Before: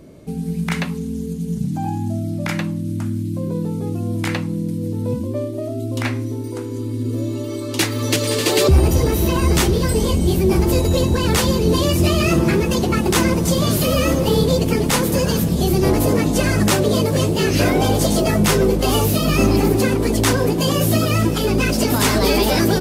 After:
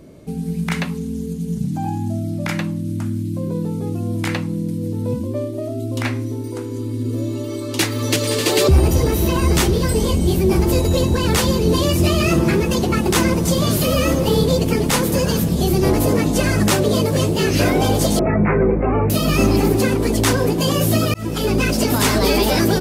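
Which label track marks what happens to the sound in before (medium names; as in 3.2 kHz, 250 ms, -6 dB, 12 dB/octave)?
18.190000	19.100000	steep low-pass 2.4 kHz 96 dB/octave
21.140000	21.540000	fade in equal-power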